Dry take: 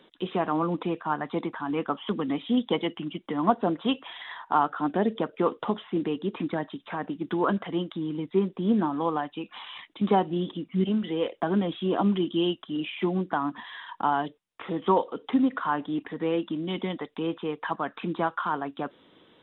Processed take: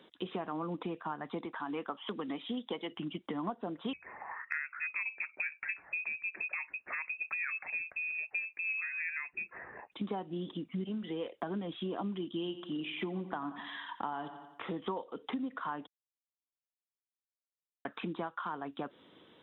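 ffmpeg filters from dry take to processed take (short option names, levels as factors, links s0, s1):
-filter_complex "[0:a]asettb=1/sr,asplit=3[s0][s1][s2];[s0]atrim=end=1.454[s3];[s1]atrim=start=1.45:end=2.92,asetpts=PTS-STARTPTS,afade=t=in:d=0.004:c=qsin,afade=t=out:st=1.466:d=0.004:c=qsin,highpass=f=340:p=1[s4];[s2]atrim=start=2.916[s5];[s3][s4]acrossfade=d=0.004:c1=hsin:c2=qsin[s6];[s6][s5]acrossfade=d=0.004:c1=qsin:c2=hsin,asettb=1/sr,asplit=3[s7][s8][s9];[s7]atrim=end=3.934[s10];[s8]atrim=start=3.93:end=9.92,asetpts=PTS-STARTPTS,afade=t=in:d=0.004:c=qsin,afade=t=out:st=5.986:d=0.004:c=qsin,lowpass=f=2400:t=q:w=0.5098,lowpass=f=2400:t=q:w=0.6013,lowpass=f=2400:t=q:w=0.9,lowpass=f=2400:t=q:w=2.563,afreqshift=-2800[s11];[s9]atrim=start=9.916[s12];[s10][s11]acrossfade=d=0.004:c1=hsin:c2=qsin[s13];[s13][s12]acrossfade=d=0.004:c1=qsin:c2=hsin,asettb=1/sr,asplit=3[s14][s15][s16];[s14]atrim=end=12.274[s17];[s15]atrim=start=12.27:end=14.71,asetpts=PTS-STARTPTS,afade=t=in:d=0.004:c=qsin,afade=t=out:st=2.436:d=0.004:c=qsin,aecho=1:1:88|176|264|352|440:0.188|0.0923|0.0452|0.0222|0.0109,atrim=end_sample=107604[s18];[s16]atrim=start=14.706[s19];[s17][s18]acrossfade=d=0.004:c1=hsin:c2=qsin[s20];[s20][s19]acrossfade=d=0.004:c1=qsin:c2=hsin,asplit=3[s21][s22][s23];[s21]atrim=end=15.87,asetpts=PTS-STARTPTS,afade=t=out:st=15.866:d=0.004:c=hsin[s24];[s22]atrim=start=15.87:end=17.85,asetpts=PTS-STARTPTS,volume=0[s25];[s23]atrim=start=17.85,asetpts=PTS-STARTPTS,afade=t=in:d=0.004:c=hsin[s26];[s24][s25][s26]concat=n=3:v=0:a=1,highpass=57,acompressor=threshold=0.0251:ratio=6,volume=0.75"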